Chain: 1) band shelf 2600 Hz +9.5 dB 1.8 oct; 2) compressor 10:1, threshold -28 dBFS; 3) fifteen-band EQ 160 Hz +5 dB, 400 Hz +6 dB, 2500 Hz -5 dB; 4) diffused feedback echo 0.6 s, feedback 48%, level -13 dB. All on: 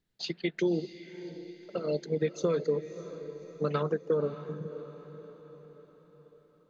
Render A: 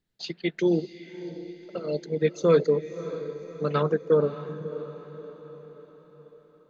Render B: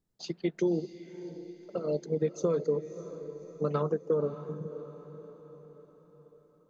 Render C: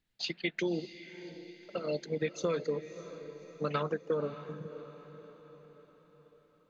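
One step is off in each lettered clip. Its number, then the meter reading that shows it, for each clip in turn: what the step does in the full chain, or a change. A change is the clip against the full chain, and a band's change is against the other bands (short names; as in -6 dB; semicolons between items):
2, mean gain reduction 3.5 dB; 1, 2 kHz band -8.0 dB; 3, 2 kHz band +7.0 dB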